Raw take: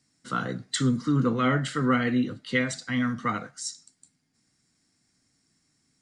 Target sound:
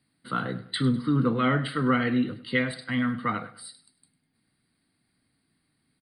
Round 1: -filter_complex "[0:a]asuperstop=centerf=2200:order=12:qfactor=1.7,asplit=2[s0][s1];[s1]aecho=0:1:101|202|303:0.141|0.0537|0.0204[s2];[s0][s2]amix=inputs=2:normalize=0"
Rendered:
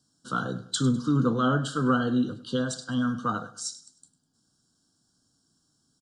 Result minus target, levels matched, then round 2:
8 kHz band +11.0 dB
-filter_complex "[0:a]asuperstop=centerf=6400:order=12:qfactor=1.7,asplit=2[s0][s1];[s1]aecho=0:1:101|202|303:0.141|0.0537|0.0204[s2];[s0][s2]amix=inputs=2:normalize=0"

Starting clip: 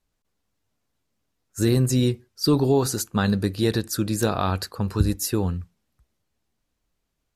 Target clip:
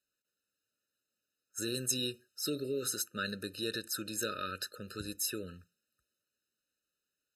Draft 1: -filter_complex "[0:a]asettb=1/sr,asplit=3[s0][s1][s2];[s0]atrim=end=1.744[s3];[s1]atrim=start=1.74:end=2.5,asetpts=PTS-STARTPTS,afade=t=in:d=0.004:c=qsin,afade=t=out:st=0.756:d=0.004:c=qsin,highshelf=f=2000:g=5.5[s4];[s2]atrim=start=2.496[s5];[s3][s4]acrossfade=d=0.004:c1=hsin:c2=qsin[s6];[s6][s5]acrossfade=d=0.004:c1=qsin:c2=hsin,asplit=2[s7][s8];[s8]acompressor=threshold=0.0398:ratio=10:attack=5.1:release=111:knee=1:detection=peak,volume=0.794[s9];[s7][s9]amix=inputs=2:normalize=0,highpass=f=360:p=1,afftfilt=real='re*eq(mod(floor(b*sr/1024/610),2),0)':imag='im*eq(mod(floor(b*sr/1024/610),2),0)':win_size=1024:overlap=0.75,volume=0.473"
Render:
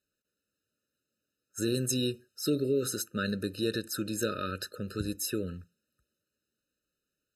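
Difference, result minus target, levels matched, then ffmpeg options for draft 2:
500 Hz band +3.0 dB
-filter_complex "[0:a]asettb=1/sr,asplit=3[s0][s1][s2];[s0]atrim=end=1.744[s3];[s1]atrim=start=1.74:end=2.5,asetpts=PTS-STARTPTS,afade=t=in:d=0.004:c=qsin,afade=t=out:st=0.756:d=0.004:c=qsin,highshelf=f=2000:g=5.5[s4];[s2]atrim=start=2.496[s5];[s3][s4]acrossfade=d=0.004:c1=hsin:c2=qsin[s6];[s6][s5]acrossfade=d=0.004:c1=qsin:c2=hsin,asplit=2[s7][s8];[s8]acompressor=threshold=0.0398:ratio=10:attack=5.1:release=111:knee=1:detection=peak,volume=0.794[s9];[s7][s9]amix=inputs=2:normalize=0,highpass=f=1200:p=1,afftfilt=real='re*eq(mod(floor(b*sr/1024/610),2),0)':imag='im*eq(mod(floor(b*sr/1024/610),2),0)':win_size=1024:overlap=0.75,volume=0.473"

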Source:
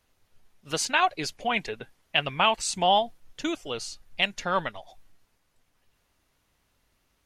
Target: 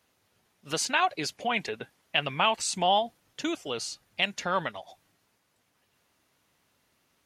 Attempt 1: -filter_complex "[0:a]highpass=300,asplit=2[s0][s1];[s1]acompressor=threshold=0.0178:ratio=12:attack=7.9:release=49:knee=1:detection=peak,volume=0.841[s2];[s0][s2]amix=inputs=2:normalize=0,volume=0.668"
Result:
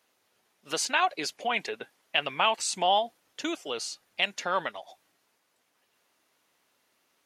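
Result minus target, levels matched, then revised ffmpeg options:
125 Hz band -9.5 dB
-filter_complex "[0:a]highpass=120,asplit=2[s0][s1];[s1]acompressor=threshold=0.0178:ratio=12:attack=7.9:release=49:knee=1:detection=peak,volume=0.841[s2];[s0][s2]amix=inputs=2:normalize=0,volume=0.668"

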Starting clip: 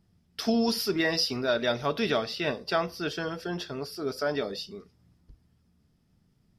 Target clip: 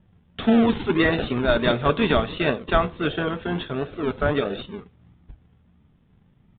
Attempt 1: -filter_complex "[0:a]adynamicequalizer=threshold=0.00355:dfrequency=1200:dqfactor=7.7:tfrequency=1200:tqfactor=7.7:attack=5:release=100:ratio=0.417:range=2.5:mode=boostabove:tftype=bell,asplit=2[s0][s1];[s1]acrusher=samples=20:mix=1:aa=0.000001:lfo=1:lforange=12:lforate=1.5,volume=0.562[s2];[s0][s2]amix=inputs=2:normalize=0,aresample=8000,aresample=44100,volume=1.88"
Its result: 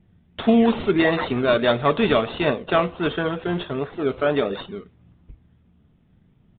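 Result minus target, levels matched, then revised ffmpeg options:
decimation with a swept rate: distortion -14 dB
-filter_complex "[0:a]adynamicequalizer=threshold=0.00355:dfrequency=1200:dqfactor=7.7:tfrequency=1200:tqfactor=7.7:attack=5:release=100:ratio=0.417:range=2.5:mode=boostabove:tftype=bell,asplit=2[s0][s1];[s1]acrusher=samples=57:mix=1:aa=0.000001:lfo=1:lforange=34.2:lforate=1.5,volume=0.562[s2];[s0][s2]amix=inputs=2:normalize=0,aresample=8000,aresample=44100,volume=1.88"

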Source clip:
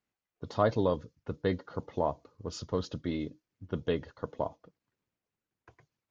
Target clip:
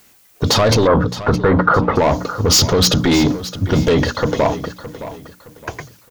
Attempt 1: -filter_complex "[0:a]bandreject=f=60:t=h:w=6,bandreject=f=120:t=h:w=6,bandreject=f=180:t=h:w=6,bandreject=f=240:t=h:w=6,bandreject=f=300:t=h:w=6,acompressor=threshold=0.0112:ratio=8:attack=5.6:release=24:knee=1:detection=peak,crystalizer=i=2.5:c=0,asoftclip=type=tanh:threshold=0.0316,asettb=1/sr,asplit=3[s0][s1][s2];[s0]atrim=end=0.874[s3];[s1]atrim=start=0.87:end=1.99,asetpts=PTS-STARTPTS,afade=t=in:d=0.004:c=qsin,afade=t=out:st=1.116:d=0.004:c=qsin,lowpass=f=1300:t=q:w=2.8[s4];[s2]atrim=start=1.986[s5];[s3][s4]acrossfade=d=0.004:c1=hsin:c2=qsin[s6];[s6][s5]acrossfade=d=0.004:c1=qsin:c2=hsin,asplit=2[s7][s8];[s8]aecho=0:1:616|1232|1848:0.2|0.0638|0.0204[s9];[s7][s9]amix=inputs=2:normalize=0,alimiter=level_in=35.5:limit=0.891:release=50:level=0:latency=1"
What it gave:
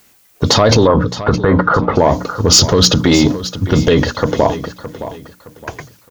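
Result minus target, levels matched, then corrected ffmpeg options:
saturation: distortion -9 dB
-filter_complex "[0:a]bandreject=f=60:t=h:w=6,bandreject=f=120:t=h:w=6,bandreject=f=180:t=h:w=6,bandreject=f=240:t=h:w=6,bandreject=f=300:t=h:w=6,acompressor=threshold=0.0112:ratio=8:attack=5.6:release=24:knee=1:detection=peak,crystalizer=i=2.5:c=0,asoftclip=type=tanh:threshold=0.01,asettb=1/sr,asplit=3[s0][s1][s2];[s0]atrim=end=0.874[s3];[s1]atrim=start=0.87:end=1.99,asetpts=PTS-STARTPTS,afade=t=in:d=0.004:c=qsin,afade=t=out:st=1.116:d=0.004:c=qsin,lowpass=f=1300:t=q:w=2.8[s4];[s2]atrim=start=1.986[s5];[s3][s4]acrossfade=d=0.004:c1=hsin:c2=qsin[s6];[s6][s5]acrossfade=d=0.004:c1=qsin:c2=hsin,asplit=2[s7][s8];[s8]aecho=0:1:616|1232|1848:0.2|0.0638|0.0204[s9];[s7][s9]amix=inputs=2:normalize=0,alimiter=level_in=35.5:limit=0.891:release=50:level=0:latency=1"

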